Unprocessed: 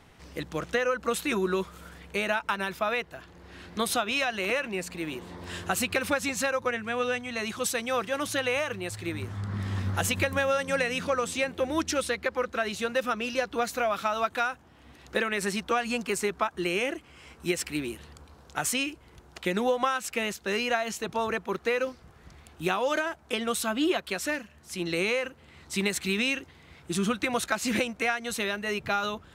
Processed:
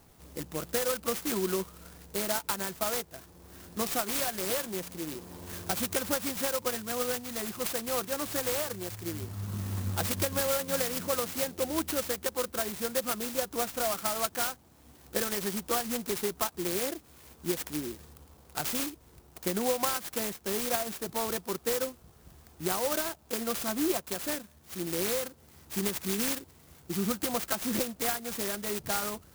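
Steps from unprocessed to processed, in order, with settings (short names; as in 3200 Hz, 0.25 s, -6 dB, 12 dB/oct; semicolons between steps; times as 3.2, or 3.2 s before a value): clock jitter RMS 0.13 ms; gain -3 dB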